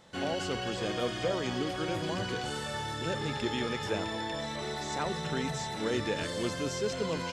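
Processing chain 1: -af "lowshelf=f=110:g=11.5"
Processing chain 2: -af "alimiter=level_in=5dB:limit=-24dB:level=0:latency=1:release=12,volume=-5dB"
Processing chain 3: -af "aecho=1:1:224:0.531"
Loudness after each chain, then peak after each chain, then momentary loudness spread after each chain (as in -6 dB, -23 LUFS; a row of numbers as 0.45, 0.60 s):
-32.0, -37.0, -32.0 LUFS; -17.5, -29.0, -17.0 dBFS; 4, 1, 3 LU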